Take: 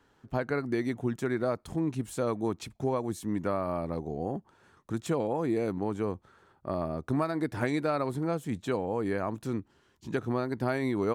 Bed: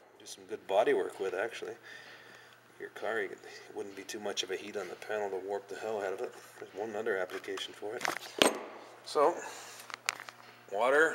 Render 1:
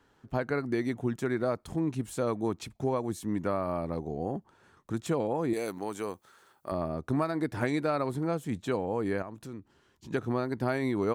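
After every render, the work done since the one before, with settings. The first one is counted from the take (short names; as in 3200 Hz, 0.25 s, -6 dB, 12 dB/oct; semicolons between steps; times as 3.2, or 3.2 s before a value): 5.53–6.72 RIAA curve recording; 9.22–10.11 compressor 2:1, threshold -45 dBFS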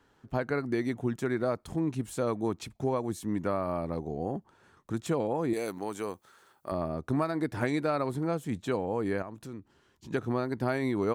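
nothing audible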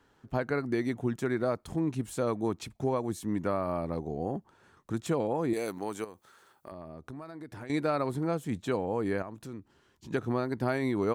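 6.04–7.7 compressor 4:1, threshold -42 dBFS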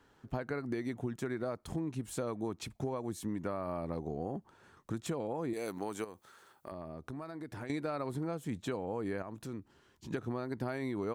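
compressor, threshold -33 dBFS, peak gain reduction 9 dB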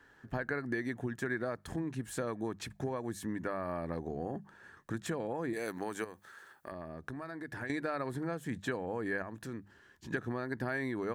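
bell 1700 Hz +14 dB 0.31 oct; notches 50/100/150/200 Hz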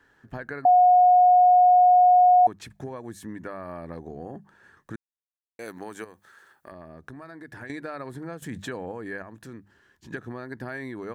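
0.65–2.47 bleep 724 Hz -12.5 dBFS; 4.96–5.59 mute; 8.42–8.92 fast leveller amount 50%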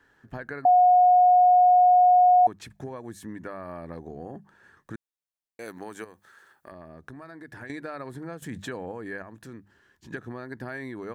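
gain -1 dB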